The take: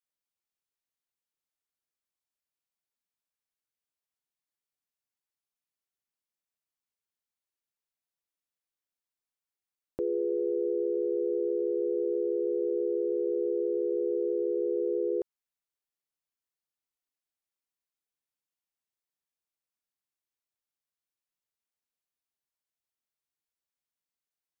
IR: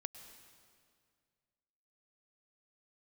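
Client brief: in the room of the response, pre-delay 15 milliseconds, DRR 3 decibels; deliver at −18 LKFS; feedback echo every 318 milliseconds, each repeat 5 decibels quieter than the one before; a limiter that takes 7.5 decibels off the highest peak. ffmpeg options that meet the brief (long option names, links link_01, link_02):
-filter_complex "[0:a]alimiter=level_in=4.5dB:limit=-24dB:level=0:latency=1,volume=-4.5dB,aecho=1:1:318|636|954|1272|1590|1908|2226:0.562|0.315|0.176|0.0988|0.0553|0.031|0.0173,asplit=2[link_01][link_02];[1:a]atrim=start_sample=2205,adelay=15[link_03];[link_02][link_03]afir=irnorm=-1:irlink=0,volume=0dB[link_04];[link_01][link_04]amix=inputs=2:normalize=0,volume=11dB"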